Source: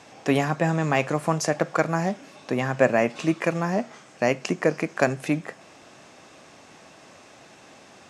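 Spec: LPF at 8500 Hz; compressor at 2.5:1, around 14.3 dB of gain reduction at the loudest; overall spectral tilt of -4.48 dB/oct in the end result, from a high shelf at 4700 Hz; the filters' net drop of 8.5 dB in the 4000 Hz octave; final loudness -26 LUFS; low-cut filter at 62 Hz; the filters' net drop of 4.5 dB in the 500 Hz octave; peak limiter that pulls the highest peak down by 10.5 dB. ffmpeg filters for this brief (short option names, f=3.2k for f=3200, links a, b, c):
-af "highpass=62,lowpass=8.5k,equalizer=f=500:t=o:g=-5.5,equalizer=f=4k:t=o:g=-8.5,highshelf=f=4.7k:g=-7.5,acompressor=threshold=-41dB:ratio=2.5,volume=18.5dB,alimiter=limit=-12dB:level=0:latency=1"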